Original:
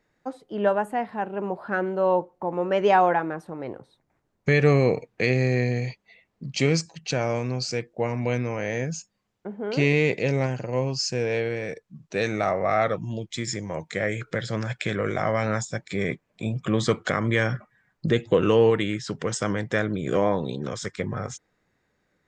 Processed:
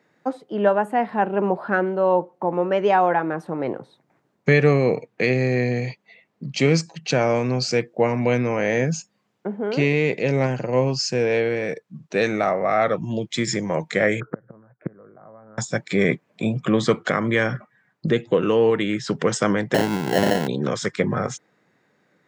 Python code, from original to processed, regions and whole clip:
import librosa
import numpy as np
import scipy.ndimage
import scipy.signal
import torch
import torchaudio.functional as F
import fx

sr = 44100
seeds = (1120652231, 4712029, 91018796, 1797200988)

y = fx.chain(x, sr, fx.steep_lowpass(hz=1400.0, slope=36),
    fx.gate_flip(shuts_db=-22.0, range_db=-28), at=(14.2, 15.58))
y = fx.chain(y, sr, fx.sample_hold(seeds[0], rate_hz=1200.0, jitter_pct=0),
    fx.overflow_wrap(gain_db=12.0), at=(19.74, 20.48))
y = scipy.signal.sosfilt(scipy.signal.butter(4, 130.0, 'highpass', fs=sr, output='sos'), y)
y = fx.high_shelf(y, sr, hz=4900.0, db=-7.0)
y = fx.rider(y, sr, range_db=4, speed_s=0.5)
y = y * librosa.db_to_amplitude(4.5)